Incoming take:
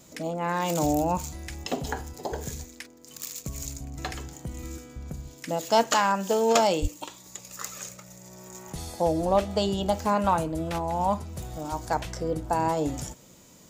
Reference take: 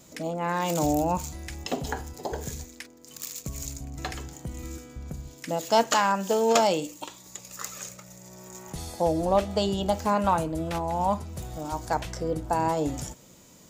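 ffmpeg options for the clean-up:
ffmpeg -i in.wav -filter_complex "[0:a]asplit=3[link_01][link_02][link_03];[link_01]afade=type=out:start_time=6.81:duration=0.02[link_04];[link_02]highpass=frequency=140:width=0.5412,highpass=frequency=140:width=1.3066,afade=type=in:start_time=6.81:duration=0.02,afade=type=out:start_time=6.93:duration=0.02[link_05];[link_03]afade=type=in:start_time=6.93:duration=0.02[link_06];[link_04][link_05][link_06]amix=inputs=3:normalize=0" out.wav

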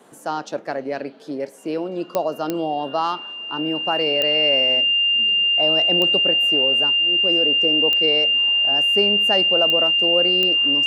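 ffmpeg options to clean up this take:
ffmpeg -i in.wav -af "adeclick=threshold=4,bandreject=frequency=2800:width=30" out.wav

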